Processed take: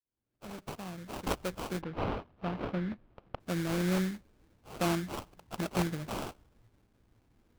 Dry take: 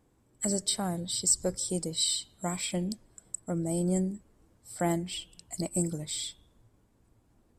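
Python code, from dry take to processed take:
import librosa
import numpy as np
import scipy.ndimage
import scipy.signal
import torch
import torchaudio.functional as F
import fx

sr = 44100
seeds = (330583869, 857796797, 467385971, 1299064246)

y = fx.fade_in_head(x, sr, length_s=2.46)
y = fx.sample_hold(y, sr, seeds[0], rate_hz=1900.0, jitter_pct=20)
y = fx.air_absorb(y, sr, metres=340.0, at=(1.8, 3.39), fade=0.02)
y = y * librosa.db_to_amplitude(-1.5)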